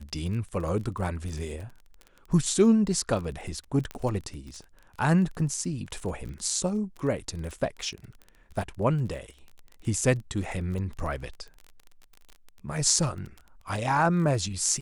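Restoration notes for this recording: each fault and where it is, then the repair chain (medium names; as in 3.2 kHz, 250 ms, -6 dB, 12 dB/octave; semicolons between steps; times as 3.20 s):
crackle 25 per s -35 dBFS
3.91 s: pop -20 dBFS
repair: de-click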